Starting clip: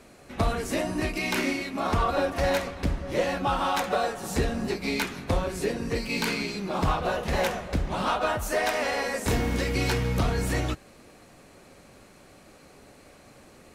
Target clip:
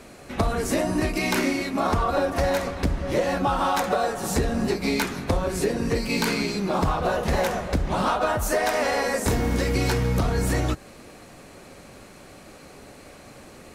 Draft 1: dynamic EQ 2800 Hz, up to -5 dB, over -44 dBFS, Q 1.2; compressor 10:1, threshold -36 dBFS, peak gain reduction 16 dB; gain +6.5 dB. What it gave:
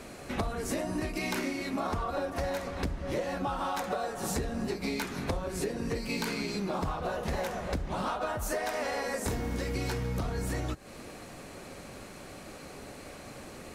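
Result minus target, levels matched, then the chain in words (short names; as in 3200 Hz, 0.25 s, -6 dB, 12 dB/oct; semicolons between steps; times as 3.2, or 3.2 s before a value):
compressor: peak gain reduction +10 dB
dynamic EQ 2800 Hz, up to -5 dB, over -44 dBFS, Q 1.2; compressor 10:1, threshold -25 dBFS, peak gain reduction 6 dB; gain +6.5 dB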